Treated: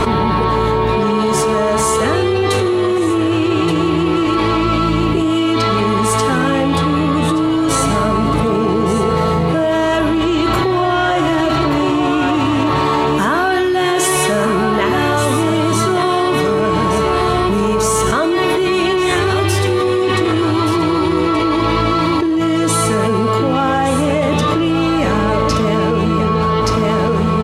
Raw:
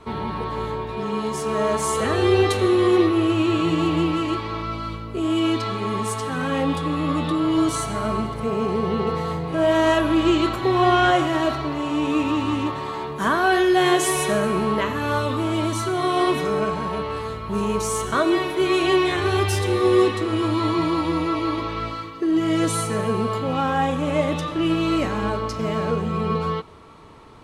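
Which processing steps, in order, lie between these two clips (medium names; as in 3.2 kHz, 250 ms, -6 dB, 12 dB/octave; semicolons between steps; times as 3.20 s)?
on a send: delay 1175 ms -10 dB; on the sum: level flattener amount 100%; trim -1 dB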